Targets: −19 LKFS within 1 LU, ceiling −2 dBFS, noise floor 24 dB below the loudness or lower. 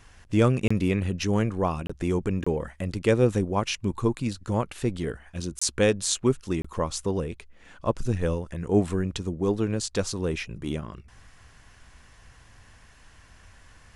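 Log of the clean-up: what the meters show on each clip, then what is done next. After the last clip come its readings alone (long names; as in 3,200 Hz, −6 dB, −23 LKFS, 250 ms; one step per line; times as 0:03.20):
number of dropouts 5; longest dropout 25 ms; integrated loudness −27.0 LKFS; sample peak −6.5 dBFS; target loudness −19.0 LKFS
→ repair the gap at 0:00.68/0:01.87/0:02.44/0:05.59/0:06.62, 25 ms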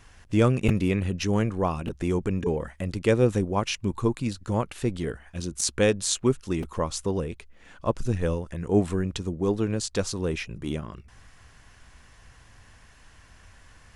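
number of dropouts 0; integrated loudness −27.0 LKFS; sample peak −6.5 dBFS; target loudness −19.0 LKFS
→ level +8 dB
brickwall limiter −2 dBFS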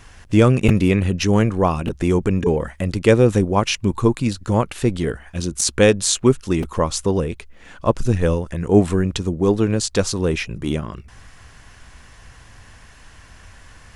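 integrated loudness −19.0 LKFS; sample peak −2.0 dBFS; background noise floor −46 dBFS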